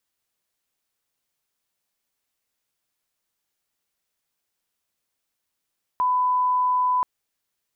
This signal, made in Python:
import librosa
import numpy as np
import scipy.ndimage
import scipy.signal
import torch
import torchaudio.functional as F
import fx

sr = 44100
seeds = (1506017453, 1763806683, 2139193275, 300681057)

y = fx.lineup_tone(sr, length_s=1.03, level_db=-18.0)